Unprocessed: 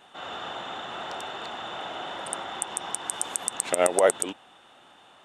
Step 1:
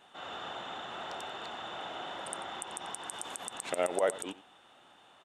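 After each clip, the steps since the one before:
brickwall limiter −11.5 dBFS, peak gain reduction 8 dB
single-tap delay 90 ms −17.5 dB
level −5.5 dB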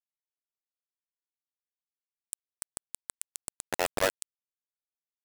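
bit reduction 4 bits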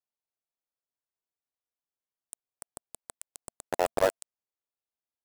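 drawn EQ curve 230 Hz 0 dB, 680 Hz +5 dB, 2,200 Hz −6 dB

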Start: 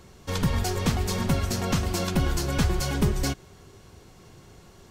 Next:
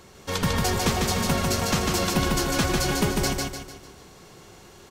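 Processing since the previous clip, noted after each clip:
low-shelf EQ 200 Hz −9.5 dB
on a send: repeating echo 149 ms, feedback 42%, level −3 dB
on the sum: level +4 dB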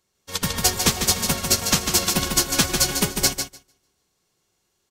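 high-shelf EQ 3,000 Hz +12 dB
expander for the loud parts 2.5 to 1, over −36 dBFS
level +2.5 dB

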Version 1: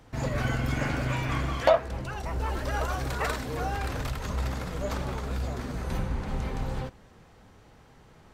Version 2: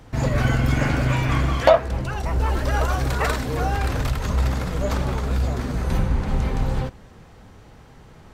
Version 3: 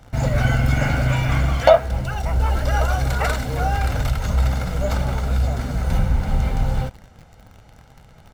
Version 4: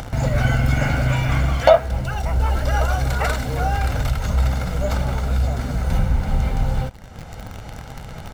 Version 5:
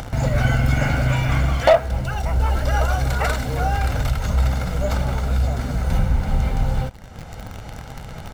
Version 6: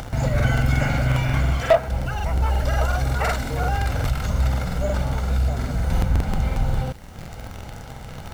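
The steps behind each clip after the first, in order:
low-shelf EQ 210 Hz +4 dB; level +6 dB
comb filter 1.4 ms, depth 49%; in parallel at −7.5 dB: bit-depth reduction 6 bits, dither none; on the sum: level −3.5 dB
upward compression, threshold −20 dBFS
hard clipping −7 dBFS, distortion −22 dB
background noise pink −52 dBFS; regular buffer underruns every 0.18 s, samples 2,048, repeat, from 0:00.35; level −1.5 dB

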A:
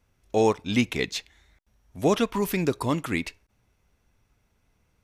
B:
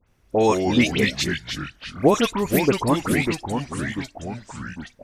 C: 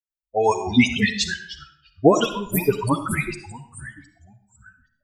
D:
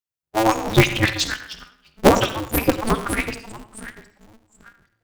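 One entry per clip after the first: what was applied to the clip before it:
delay with pitch and tempo change per echo 90 ms, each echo −3 semitones, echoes 3, each echo −6 dB; harmonic and percussive parts rebalanced percussive +5 dB; all-pass dispersion highs, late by 74 ms, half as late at 2,400 Hz; level +1.5 dB
spectral dynamics exaggerated over time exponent 3; convolution reverb RT60 0.65 s, pre-delay 20 ms, DRR 8.5 dB; level +5.5 dB
ring modulator with a square carrier 110 Hz; level +1 dB

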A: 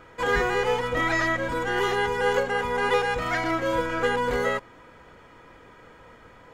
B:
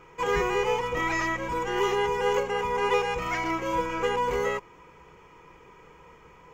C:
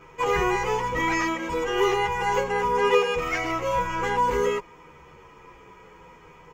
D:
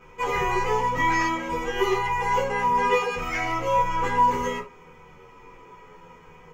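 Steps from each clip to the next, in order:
EQ curve with evenly spaced ripples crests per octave 0.76, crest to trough 10 dB; level −3.5 dB
barber-pole flanger 10.2 ms −0.61 Hz; level +6 dB
convolution reverb, pre-delay 4 ms, DRR −0.5 dB; level −3.5 dB

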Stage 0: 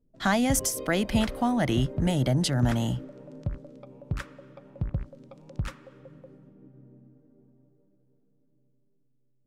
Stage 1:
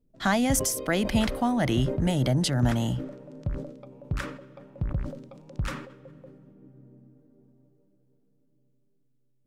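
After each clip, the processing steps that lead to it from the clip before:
level that may fall only so fast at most 76 dB per second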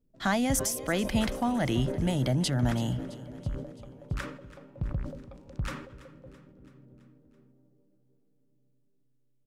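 repeating echo 332 ms, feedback 58%, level −18 dB
level −3 dB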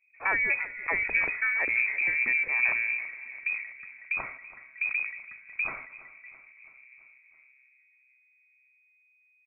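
voice inversion scrambler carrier 2,500 Hz

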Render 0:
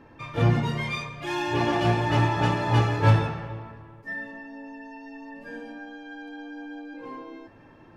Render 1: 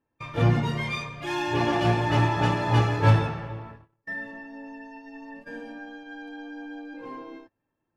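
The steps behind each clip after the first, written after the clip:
noise gate −42 dBFS, range −29 dB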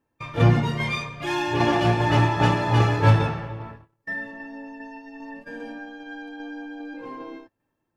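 shaped tremolo saw down 2.5 Hz, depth 35%
level +4.5 dB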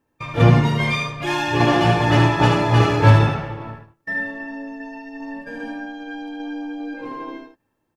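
single-tap delay 75 ms −5.5 dB
level +4 dB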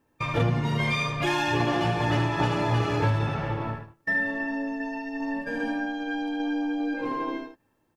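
downward compressor 6 to 1, threshold −24 dBFS, peak gain reduction 16 dB
level +2 dB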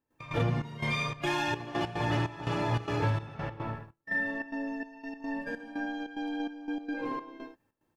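gate pattern ".x.xxx..xxx.xxx." 146 BPM −12 dB
level −4.5 dB

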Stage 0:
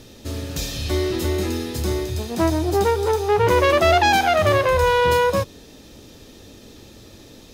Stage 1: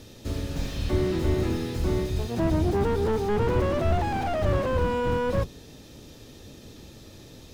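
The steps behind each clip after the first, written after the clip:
sub-octave generator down 1 octave, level −1 dB
slew-rate limiting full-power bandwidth 55 Hz
level −3.5 dB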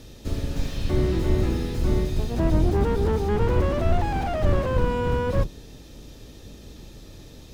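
sub-octave generator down 2 octaves, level +3 dB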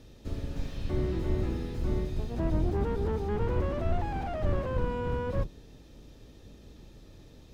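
high-shelf EQ 3,900 Hz −7.5 dB
level −7.5 dB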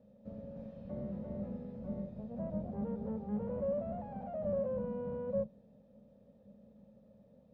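pair of resonant band-passes 340 Hz, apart 1.4 octaves
level +3 dB

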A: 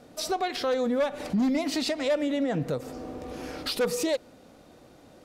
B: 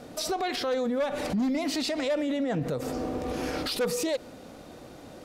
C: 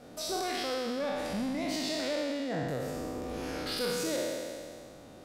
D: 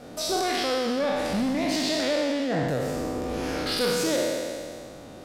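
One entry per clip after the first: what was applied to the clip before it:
brickwall limiter −29 dBFS, peak gain reduction 9.5 dB; level +7 dB
peak hold with a decay on every bin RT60 2.16 s; level −8.5 dB
highs frequency-modulated by the lows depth 0.12 ms; level +7.5 dB

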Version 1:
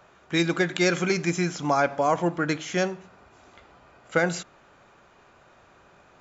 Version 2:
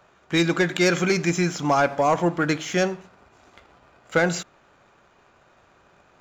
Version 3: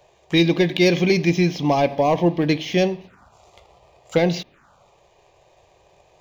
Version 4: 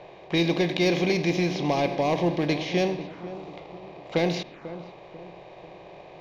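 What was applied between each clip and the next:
leveller curve on the samples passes 1
phaser swept by the level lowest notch 220 Hz, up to 1,400 Hz, full sweep at −27 dBFS; level +5 dB
compressor on every frequency bin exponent 0.6; low-pass that shuts in the quiet parts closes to 2,600 Hz, open at −11 dBFS; feedback echo with a low-pass in the loop 493 ms, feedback 45%, low-pass 1,100 Hz, level −13 dB; level −8.5 dB

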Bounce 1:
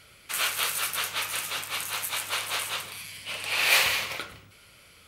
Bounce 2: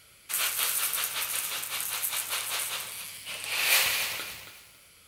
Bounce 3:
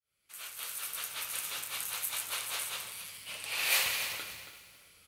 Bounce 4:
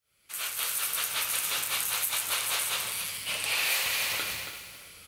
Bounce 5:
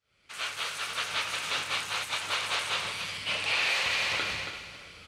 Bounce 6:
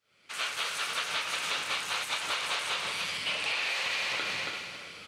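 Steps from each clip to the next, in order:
high-shelf EQ 5,800 Hz +9.5 dB; feedback echo at a low word length 276 ms, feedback 35%, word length 7 bits, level −10 dB; level −5 dB
fade in at the beginning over 1.55 s; repeating echo 338 ms, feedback 32%, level −18.5 dB; level −5 dB
in parallel at −4 dB: soft clipping −27 dBFS, distortion −12 dB; on the sum: downward compressor 6 to 1, threshold −32 dBFS, peak gain reduction 10.5 dB; level +6.5 dB
in parallel at −3 dB: brickwall limiter −22 dBFS, peak gain reduction 10.5 dB; on the sum: high-frequency loss of the air 120 metres
high-pass filter 160 Hz 12 dB per octave; downward compressor, threshold −32 dBFS, peak gain reduction 8 dB; level +3.5 dB

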